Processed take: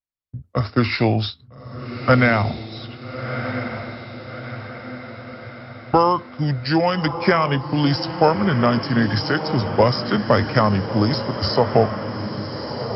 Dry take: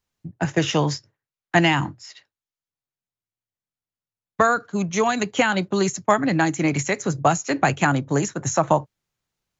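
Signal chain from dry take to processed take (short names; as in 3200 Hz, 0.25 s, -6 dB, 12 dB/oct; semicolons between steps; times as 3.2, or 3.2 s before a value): gate with hold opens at -37 dBFS; diffused feedback echo 0.958 s, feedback 55%, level -9 dB; speed mistake 45 rpm record played at 33 rpm; gain +2 dB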